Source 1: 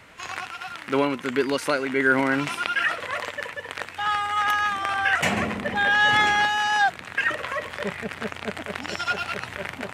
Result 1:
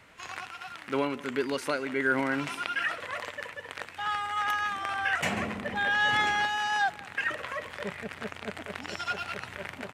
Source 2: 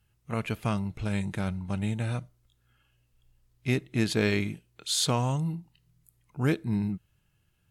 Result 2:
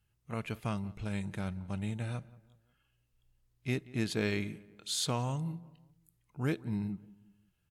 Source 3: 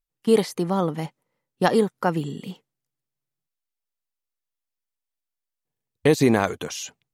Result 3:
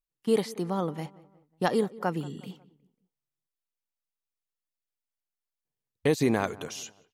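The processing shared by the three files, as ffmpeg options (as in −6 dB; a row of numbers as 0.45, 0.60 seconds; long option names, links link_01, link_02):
-filter_complex "[0:a]asplit=2[link_01][link_02];[link_02]adelay=181,lowpass=frequency=1900:poles=1,volume=-20dB,asplit=2[link_03][link_04];[link_04]adelay=181,lowpass=frequency=1900:poles=1,volume=0.46,asplit=2[link_05][link_06];[link_06]adelay=181,lowpass=frequency=1900:poles=1,volume=0.46[link_07];[link_01][link_03][link_05][link_07]amix=inputs=4:normalize=0,volume=-6.5dB"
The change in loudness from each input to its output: −6.5, −6.5, −7.0 LU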